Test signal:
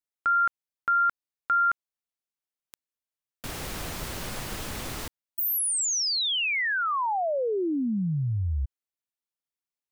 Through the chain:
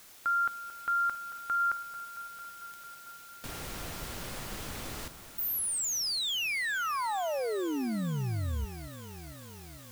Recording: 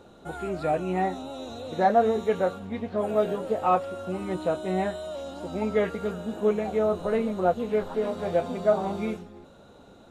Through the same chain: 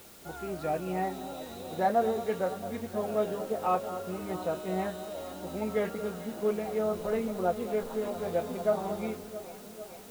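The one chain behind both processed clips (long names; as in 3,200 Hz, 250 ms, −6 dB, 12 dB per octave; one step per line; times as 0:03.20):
bit-depth reduction 8 bits, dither triangular
delay that swaps between a low-pass and a high-pass 224 ms, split 1,500 Hz, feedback 83%, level −12.5 dB
level −5.5 dB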